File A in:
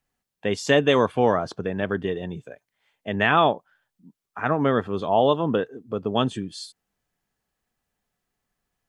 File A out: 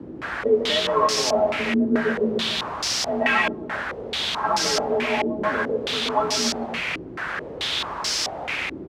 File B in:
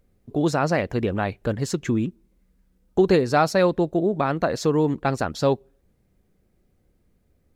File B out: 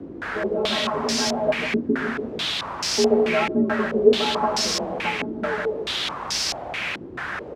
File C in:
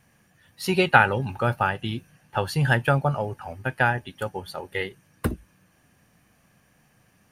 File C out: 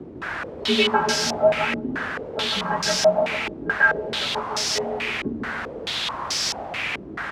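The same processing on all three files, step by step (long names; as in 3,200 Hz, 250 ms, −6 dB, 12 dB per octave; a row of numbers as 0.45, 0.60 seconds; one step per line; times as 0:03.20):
mains-hum notches 50/100/150/200 Hz
downward compressor 2.5 to 1, threshold −22 dBFS
stiff-string resonator 190 Hz, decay 0.2 s, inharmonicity 0.008
echo with shifted repeats 284 ms, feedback 42%, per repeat −61 Hz, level −17 dB
bit-depth reduction 6 bits, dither triangular
frequency shifter +41 Hz
on a send: loudspeakers that aren't time-aligned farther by 52 metres −5 dB, 95 metres −11 dB
on the sum: low-pass on a step sequencer 4.6 Hz 320–5,300 Hz
loudness normalisation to −23 LKFS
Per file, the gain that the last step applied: +9.0, +8.5, +9.0 decibels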